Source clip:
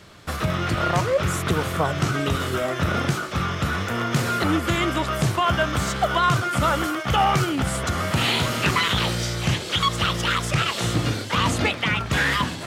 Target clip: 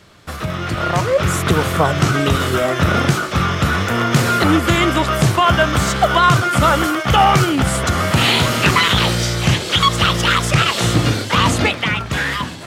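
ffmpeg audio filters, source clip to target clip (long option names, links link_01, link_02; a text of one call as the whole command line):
ffmpeg -i in.wav -af "dynaudnorm=framelen=120:gausssize=17:maxgain=11.5dB" out.wav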